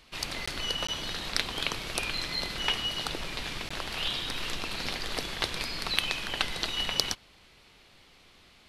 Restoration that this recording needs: interpolate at 0.46/0.87/3.69 s, 15 ms

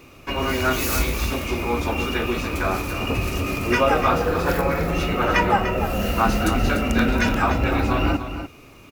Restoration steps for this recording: inverse comb 295 ms -10 dB

